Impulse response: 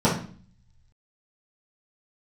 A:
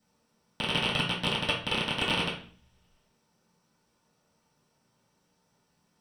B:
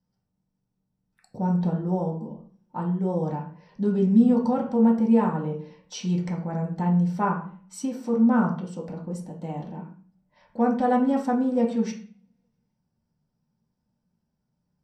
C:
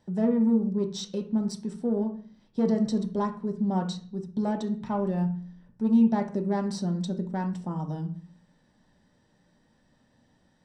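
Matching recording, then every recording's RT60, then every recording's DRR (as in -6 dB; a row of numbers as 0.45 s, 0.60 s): A; 0.45 s, 0.45 s, 0.45 s; -10.0 dB, -2.0 dB, 3.5 dB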